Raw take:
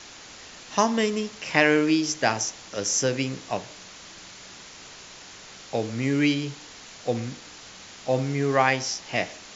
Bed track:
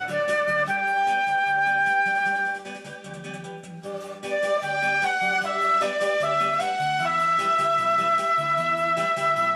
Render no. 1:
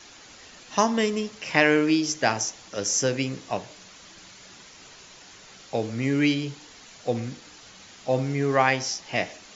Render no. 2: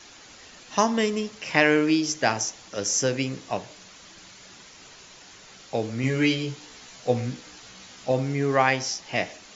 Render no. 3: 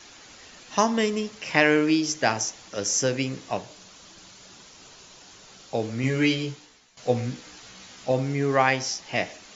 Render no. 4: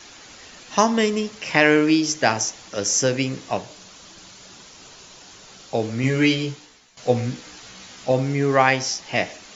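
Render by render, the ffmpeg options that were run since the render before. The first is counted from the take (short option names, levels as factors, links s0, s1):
-af "afftdn=nr=6:nf=-45"
-filter_complex "[0:a]asettb=1/sr,asplit=3[s0][s1][s2];[s0]atrim=end=6.024[s3];[s1]atrim=start=6.02:end=8.12,asetpts=PTS-STARTPTS,afade=t=in:d=0.004:c=qsin,afade=t=out:st=2.096:d=0.004:c=qsin,asplit=2[s4][s5];[s5]adelay=16,volume=0.708[s6];[s4][s6]amix=inputs=2:normalize=0,atrim=end_sample=92610[s7];[s2]atrim=start=8.116[s8];[s3][s7]acrossfade=d=0.004:c1=hsin:c2=qsin[s9];[s9][s8]acrossfade=d=0.004:c1=qsin:c2=hsin"
-filter_complex "[0:a]asettb=1/sr,asplit=3[s0][s1][s2];[s0]atrim=end=3.614[s3];[s1]atrim=start=3.61:end=5.8,asetpts=PTS-STARTPTS,afade=t=in:d=0.004:c=qsin,afade=t=out:st=2.186:d=0.004:c=qsin,equalizer=f=2000:t=o:w=0.77:g=-5[s4];[s2]atrim=start=5.796[s5];[s3][s4]acrossfade=d=0.004:c1=hsin:c2=qsin[s6];[s6][s5]acrossfade=d=0.004:c1=qsin:c2=hsin,asplit=2[s7][s8];[s7]atrim=end=6.97,asetpts=PTS-STARTPTS,afade=t=out:st=6.45:d=0.52:c=qua:silence=0.16788[s9];[s8]atrim=start=6.97,asetpts=PTS-STARTPTS,afade=t=in:d=0.004:c=hsin:silence=0.16788[s10];[s9][s10]concat=n=2:v=0:a=1"
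-af "volume=1.58,alimiter=limit=0.891:level=0:latency=1"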